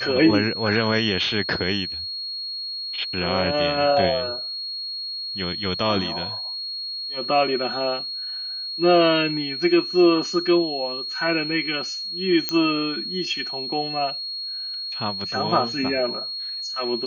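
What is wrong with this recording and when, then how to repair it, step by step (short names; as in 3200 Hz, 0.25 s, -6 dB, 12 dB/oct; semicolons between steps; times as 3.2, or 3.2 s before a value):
tone 4300 Hz -28 dBFS
12.49 pop -7 dBFS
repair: de-click; notch 4300 Hz, Q 30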